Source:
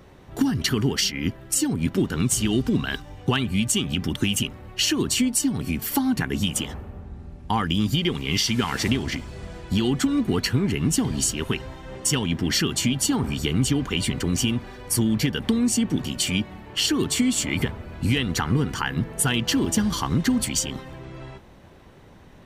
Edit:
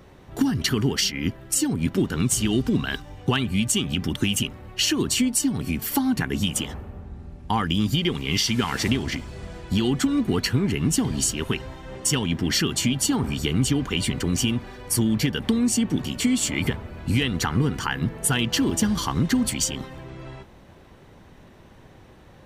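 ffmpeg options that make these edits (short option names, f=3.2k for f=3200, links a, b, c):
-filter_complex "[0:a]asplit=2[a][b];[a]atrim=end=16.202[c];[b]atrim=start=17.148[d];[c][d]acrossfade=d=0.004:c1=hsin:c2=hsin"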